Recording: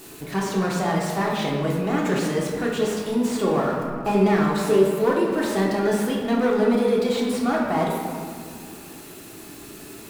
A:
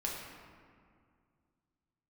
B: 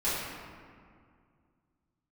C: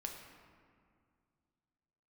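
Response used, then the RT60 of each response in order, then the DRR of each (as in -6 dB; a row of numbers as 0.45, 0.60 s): A; 2.1, 2.1, 2.1 s; -3.5, -13.0, 1.5 dB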